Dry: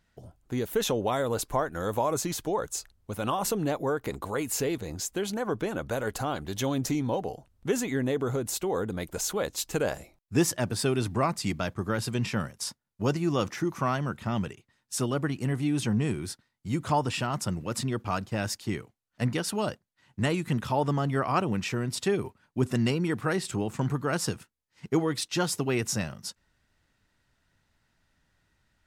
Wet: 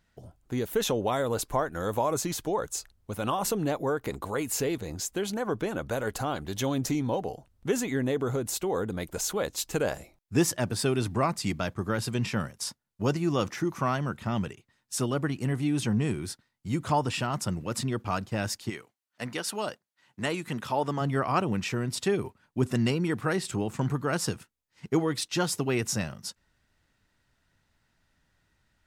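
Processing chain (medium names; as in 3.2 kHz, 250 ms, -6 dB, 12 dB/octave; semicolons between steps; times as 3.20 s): 18.69–21.00 s: high-pass 720 Hz -> 260 Hz 6 dB/octave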